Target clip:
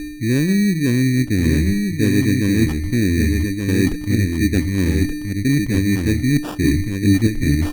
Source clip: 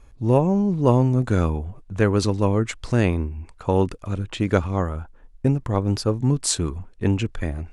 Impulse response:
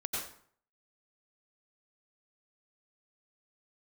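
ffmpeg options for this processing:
-filter_complex "[0:a]lowshelf=frequency=450:width_type=q:width=3:gain=14,aeval=exprs='val(0)+0.0708*sin(2*PI*2400*n/s)':channel_layout=same,areverse,acompressor=threshold=-16dB:ratio=5,areverse,bandreject=frequency=174:width_type=h:width=4,bandreject=frequency=348:width_type=h:width=4,bandreject=frequency=522:width_type=h:width=4,bandreject=frequency=696:width_type=h:width=4,bandreject=frequency=870:width_type=h:width=4,bandreject=frequency=1044:width_type=h:width=4,bandreject=frequency=1218:width_type=h:width=4,bandreject=frequency=1392:width_type=h:width=4,bandreject=frequency=1566:width_type=h:width=4,bandreject=frequency=1740:width_type=h:width=4,bandreject=frequency=1914:width_type=h:width=4,bandreject=frequency=2088:width_type=h:width=4,bandreject=frequency=2262:width_type=h:width=4,bandreject=frequency=2436:width_type=h:width=4,bandreject=frequency=2610:width_type=h:width=4,bandreject=frequency=2784:width_type=h:width=4,bandreject=frequency=2958:width_type=h:width=4,bandreject=frequency=3132:width_type=h:width=4,bandreject=frequency=3306:width_type=h:width=4,acrusher=samples=21:mix=1:aa=0.000001,asplit=2[link_01][link_02];[link_02]aecho=0:1:1176:0.596[link_03];[link_01][link_03]amix=inputs=2:normalize=0"

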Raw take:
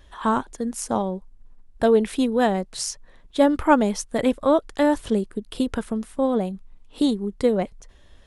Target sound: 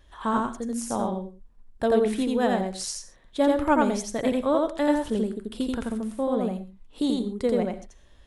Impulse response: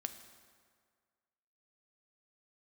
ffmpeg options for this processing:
-filter_complex "[0:a]asplit=2[link_01][link_02];[1:a]atrim=start_sample=2205,atrim=end_sample=6174,adelay=85[link_03];[link_02][link_03]afir=irnorm=-1:irlink=0,volume=0.5dB[link_04];[link_01][link_04]amix=inputs=2:normalize=0,volume=-5.5dB"

